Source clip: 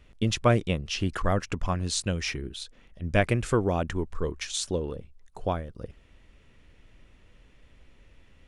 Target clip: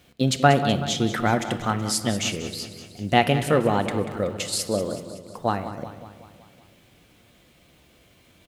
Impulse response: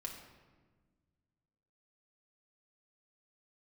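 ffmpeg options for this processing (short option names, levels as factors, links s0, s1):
-filter_complex "[0:a]highpass=99,asetrate=52444,aresample=44100,atempo=0.840896,acrusher=bits=10:mix=0:aa=0.000001,aecho=1:1:188|376|564|752|940|1128:0.224|0.13|0.0753|0.0437|0.0253|0.0147,asplit=2[s0][s1];[1:a]atrim=start_sample=2205[s2];[s1][s2]afir=irnorm=-1:irlink=0,volume=0.841[s3];[s0][s3]amix=inputs=2:normalize=0,volume=1.12"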